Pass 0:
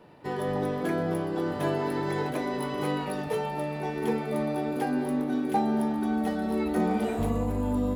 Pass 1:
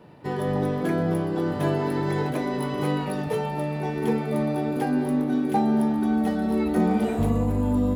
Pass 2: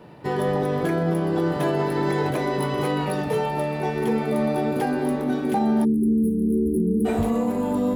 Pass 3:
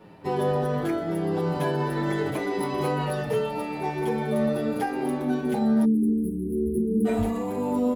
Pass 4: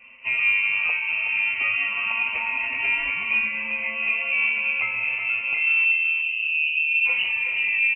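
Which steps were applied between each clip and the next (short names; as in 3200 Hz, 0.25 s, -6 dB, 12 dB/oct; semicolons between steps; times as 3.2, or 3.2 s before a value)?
bell 130 Hz +6 dB 2 oct; gain +1.5 dB
spectral delete 5.85–7.05, 470–8300 Hz; notches 50/100/150/200/250/300 Hz; limiter -18.5 dBFS, peak gain reduction 6.5 dB; gain +4.5 dB
endless flanger 7.1 ms -0.82 Hz
thirty-one-band EQ 500 Hz +6 dB, 1250 Hz -11 dB, 2000 Hz +5 dB; inverted band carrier 2900 Hz; feedback echo 0.372 s, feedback 30%, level -8 dB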